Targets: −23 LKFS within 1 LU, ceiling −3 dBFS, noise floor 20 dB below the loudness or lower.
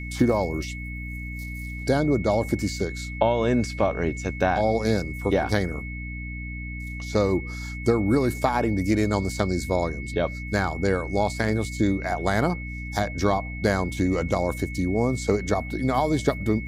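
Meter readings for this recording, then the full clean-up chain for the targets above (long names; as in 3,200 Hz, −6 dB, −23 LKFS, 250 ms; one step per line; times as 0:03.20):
mains hum 60 Hz; hum harmonics up to 300 Hz; level of the hum −32 dBFS; interfering tone 2,200 Hz; level of the tone −37 dBFS; integrated loudness −25.5 LKFS; sample peak −6.5 dBFS; target loudness −23.0 LKFS
→ mains-hum notches 60/120/180/240/300 Hz
notch filter 2,200 Hz, Q 30
level +2.5 dB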